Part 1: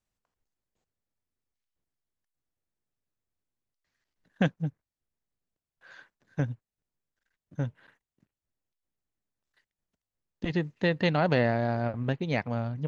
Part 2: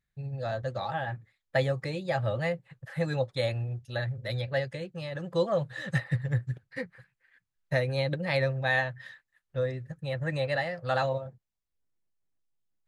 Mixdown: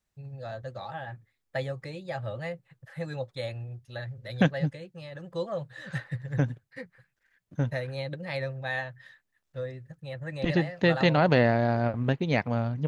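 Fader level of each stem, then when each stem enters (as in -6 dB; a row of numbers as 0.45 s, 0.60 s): +3.0 dB, -5.5 dB; 0.00 s, 0.00 s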